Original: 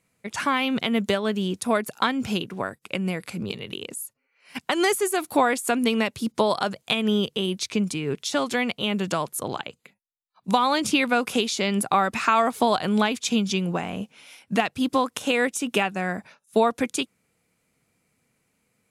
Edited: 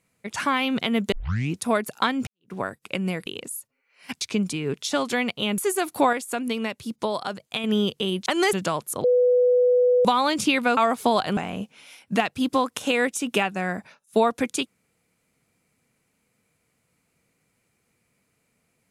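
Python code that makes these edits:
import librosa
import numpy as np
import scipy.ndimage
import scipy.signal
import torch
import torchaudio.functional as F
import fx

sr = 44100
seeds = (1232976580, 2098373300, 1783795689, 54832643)

y = fx.edit(x, sr, fx.tape_start(start_s=1.12, length_s=0.44),
    fx.fade_in_span(start_s=2.27, length_s=0.25, curve='exp'),
    fx.cut(start_s=3.26, length_s=0.46),
    fx.swap(start_s=4.67, length_s=0.27, other_s=7.62, other_length_s=1.37),
    fx.clip_gain(start_s=5.49, length_s=1.51, db=-5.0),
    fx.bleep(start_s=9.5, length_s=1.01, hz=495.0, db=-15.0),
    fx.cut(start_s=11.23, length_s=1.1),
    fx.cut(start_s=12.93, length_s=0.84), tone=tone)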